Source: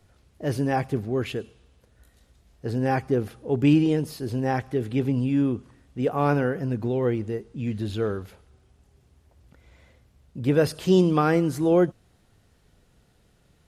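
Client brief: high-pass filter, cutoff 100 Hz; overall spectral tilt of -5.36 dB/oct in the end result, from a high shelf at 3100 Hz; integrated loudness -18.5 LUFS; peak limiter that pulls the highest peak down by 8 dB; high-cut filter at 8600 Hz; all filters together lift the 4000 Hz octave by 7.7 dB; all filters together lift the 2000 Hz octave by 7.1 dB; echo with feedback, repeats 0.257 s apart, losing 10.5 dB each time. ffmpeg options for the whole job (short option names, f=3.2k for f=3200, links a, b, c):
-af "highpass=100,lowpass=8.6k,equalizer=f=2k:t=o:g=7,highshelf=f=3.1k:g=5,equalizer=f=4k:t=o:g=4,alimiter=limit=-13dB:level=0:latency=1,aecho=1:1:257|514|771:0.299|0.0896|0.0269,volume=7.5dB"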